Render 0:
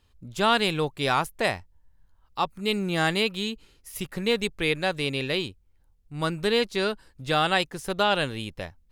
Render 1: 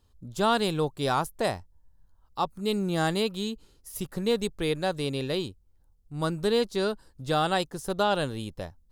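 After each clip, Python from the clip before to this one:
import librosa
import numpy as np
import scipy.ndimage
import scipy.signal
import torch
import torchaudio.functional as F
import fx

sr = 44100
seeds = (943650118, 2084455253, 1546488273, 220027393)

y = fx.peak_eq(x, sr, hz=2300.0, db=-11.5, octaves=1.1)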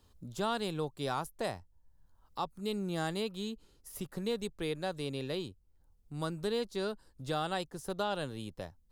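y = fx.band_squash(x, sr, depth_pct=40)
y = y * 10.0 ** (-8.5 / 20.0)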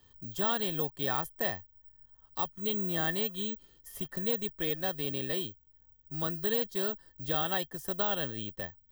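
y = (np.kron(scipy.signal.resample_poly(x, 1, 2), np.eye(2)[0]) * 2)[:len(x)]
y = fx.small_body(y, sr, hz=(1800.0, 3200.0), ring_ms=65, db=18)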